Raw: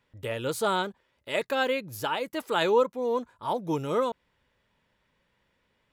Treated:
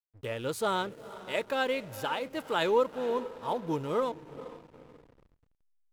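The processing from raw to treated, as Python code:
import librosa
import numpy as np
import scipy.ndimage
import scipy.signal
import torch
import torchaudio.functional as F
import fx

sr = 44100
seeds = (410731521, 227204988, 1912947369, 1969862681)

y = fx.echo_diffused(x, sr, ms=463, feedback_pct=48, wet_db=-14)
y = fx.backlash(y, sr, play_db=-40.5)
y = y * librosa.db_to_amplitude(-3.0)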